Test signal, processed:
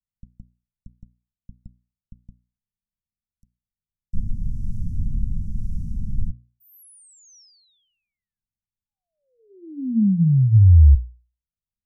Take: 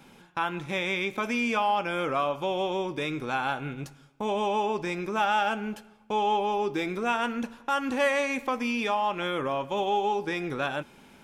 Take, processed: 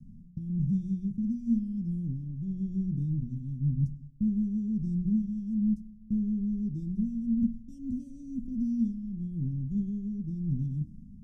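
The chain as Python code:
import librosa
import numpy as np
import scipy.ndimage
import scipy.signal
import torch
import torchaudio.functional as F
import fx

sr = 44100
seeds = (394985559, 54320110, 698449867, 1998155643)

y = scipy.signal.sosfilt(scipy.signal.cheby1(4, 1.0, [220.0, 5700.0], 'bandstop', fs=sr, output='sos'), x)
y = fx.tilt_eq(y, sr, slope=-3.5)
y = fx.rotary(y, sr, hz=1.0)
y = scipy.signal.sosfilt(scipy.signal.butter(2, 8400.0, 'lowpass', fs=sr, output='sos'), y)
y = fx.peak_eq(y, sr, hz=6100.0, db=-13.5, octaves=2.1)
y = fx.hum_notches(y, sr, base_hz=60, count=8)
y = y * 10.0 ** (4.0 / 20.0)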